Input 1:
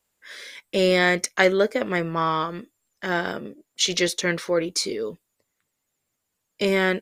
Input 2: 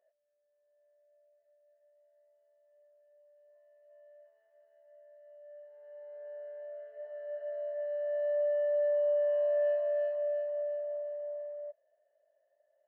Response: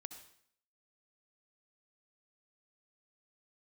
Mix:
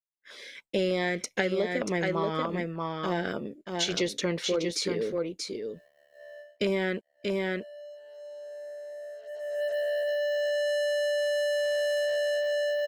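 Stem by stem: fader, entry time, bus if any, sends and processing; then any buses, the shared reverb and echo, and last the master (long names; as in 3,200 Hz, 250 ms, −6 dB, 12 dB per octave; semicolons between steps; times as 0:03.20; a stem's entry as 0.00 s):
−0.5 dB, 0.00 s, no send, echo send −6 dB, low-pass filter 3,400 Hz 6 dB per octave; downward expander −41 dBFS; auto-filter notch saw down 3.3 Hz 800–2,000 Hz
0:07.13 −4.5 dB → 0:07.89 −12.5 dB → 0:09.27 −12.5 dB → 0:09.62 −2.5 dB, 2.30 s, send −21 dB, no echo send, leveller curve on the samples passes 5; automatic ducking −24 dB, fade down 0.20 s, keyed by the first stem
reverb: on, RT60 0.65 s, pre-delay 58 ms
echo: single-tap delay 634 ms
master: downward compressor 6 to 1, threshold −24 dBFS, peak gain reduction 9 dB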